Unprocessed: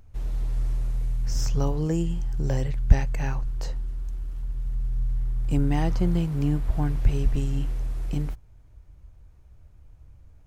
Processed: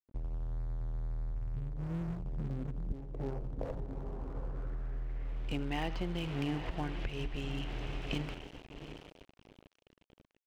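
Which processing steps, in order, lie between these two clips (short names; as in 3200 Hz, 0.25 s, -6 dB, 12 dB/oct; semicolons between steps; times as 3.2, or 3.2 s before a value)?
echo 80 ms -15.5 dB; low-pass sweep 110 Hz -> 2900 Hz, 1.78–5.49; diffused feedback echo 0.797 s, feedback 40%, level -13 dB; crossover distortion -41 dBFS; compressor 10:1, threshold -30 dBFS, peak gain reduction 22.5 dB; tone controls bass -10 dB, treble +5 dB; gain +5.5 dB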